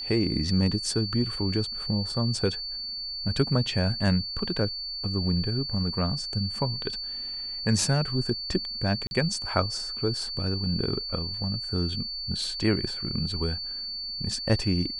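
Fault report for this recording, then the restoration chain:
tone 4500 Hz -32 dBFS
9.07–9.11 gap 41 ms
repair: notch 4500 Hz, Q 30; interpolate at 9.07, 41 ms

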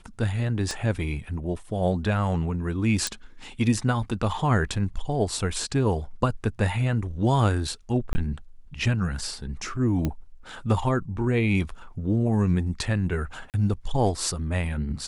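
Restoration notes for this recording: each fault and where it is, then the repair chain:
0.71 pop -17 dBFS
3.07 pop
8.13–8.15 gap 20 ms
10.05 pop -14 dBFS
13.5–13.54 gap 38 ms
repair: de-click; interpolate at 8.13, 20 ms; interpolate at 13.5, 38 ms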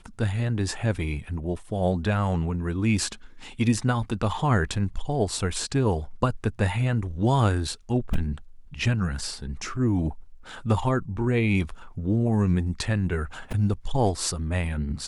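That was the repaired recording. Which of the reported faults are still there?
0.71 pop

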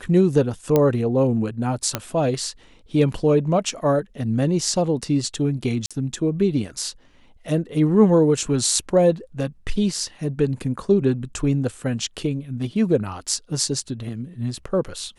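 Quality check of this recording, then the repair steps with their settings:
0.76 pop -6 dBFS
1.95 pop -6 dBFS
5.86–5.91 gap 46 ms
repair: de-click; interpolate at 5.86, 46 ms

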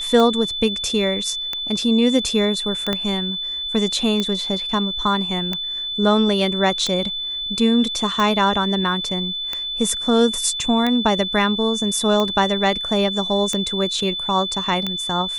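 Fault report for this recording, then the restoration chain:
tick 45 rpm -9 dBFS
tone 3500 Hz -24 dBFS
2.93 pop -8 dBFS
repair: de-click; notch 3500 Hz, Q 30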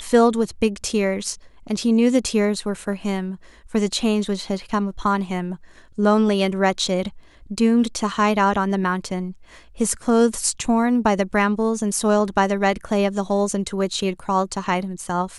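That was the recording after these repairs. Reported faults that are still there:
2.93 pop

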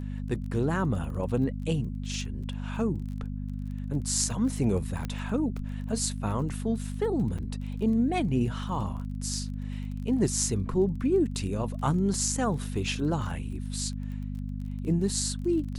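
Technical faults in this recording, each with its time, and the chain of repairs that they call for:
crackle 24/s -38 dBFS
hum 50 Hz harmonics 5 -34 dBFS
5.05 pop -20 dBFS
7.38–7.39 gap 5.9 ms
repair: de-click; de-hum 50 Hz, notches 5; interpolate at 7.38, 5.9 ms

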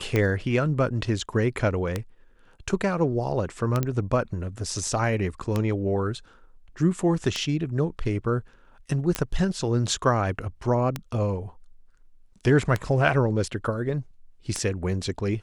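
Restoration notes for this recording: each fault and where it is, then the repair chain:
tick 33 1/3 rpm -11 dBFS
3.83 pop -12 dBFS
9.15 pop -9 dBFS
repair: de-click

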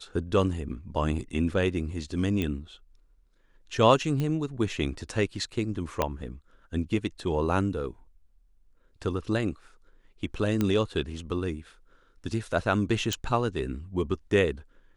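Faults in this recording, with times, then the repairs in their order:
2.42 pop -17 dBFS
4.2 pop -18 dBFS
6.02 pop -10 dBFS
10.61 pop -13 dBFS
13.13 pop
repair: de-click

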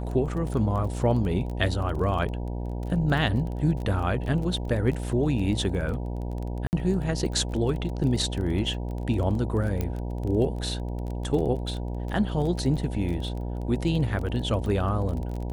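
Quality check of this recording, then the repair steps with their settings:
buzz 60 Hz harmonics 16 -31 dBFS
crackle 20/s -32 dBFS
6.67–6.73 gap 59 ms
9.81 pop -15 dBFS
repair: de-click; de-hum 60 Hz, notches 16; interpolate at 6.67, 59 ms

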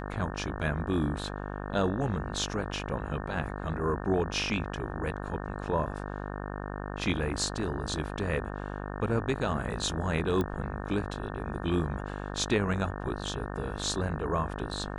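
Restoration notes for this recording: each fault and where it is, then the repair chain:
buzz 50 Hz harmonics 36 -37 dBFS
10.41 pop -18 dBFS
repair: de-click; de-hum 50 Hz, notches 36

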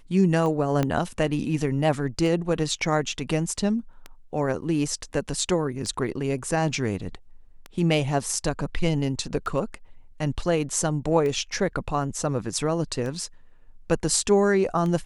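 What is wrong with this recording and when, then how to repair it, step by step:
tick 33 1/3 rpm -20 dBFS
0.83 pop -11 dBFS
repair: de-click

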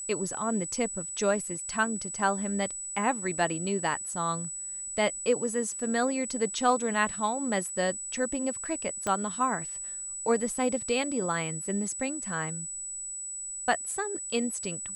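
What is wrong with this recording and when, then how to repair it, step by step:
tone 7900 Hz -35 dBFS
9.07 pop -16 dBFS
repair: de-click; notch 7900 Hz, Q 30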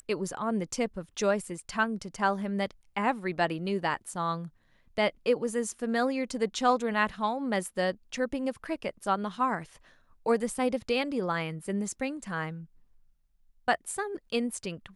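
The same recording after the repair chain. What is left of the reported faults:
9.07 pop

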